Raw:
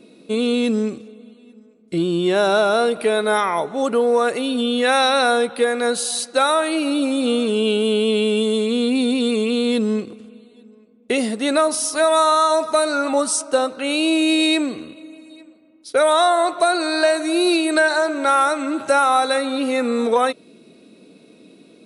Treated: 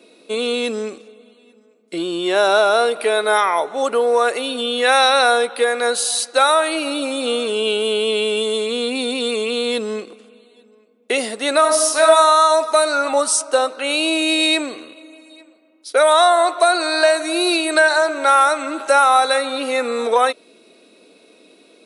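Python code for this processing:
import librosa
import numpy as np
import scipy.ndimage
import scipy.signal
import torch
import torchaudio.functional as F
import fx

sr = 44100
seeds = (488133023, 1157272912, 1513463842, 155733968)

y = fx.reverb_throw(x, sr, start_s=11.58, length_s=0.48, rt60_s=0.84, drr_db=2.5)
y = scipy.signal.sosfilt(scipy.signal.butter(2, 470.0, 'highpass', fs=sr, output='sos'), y)
y = y * 10.0 ** (3.5 / 20.0)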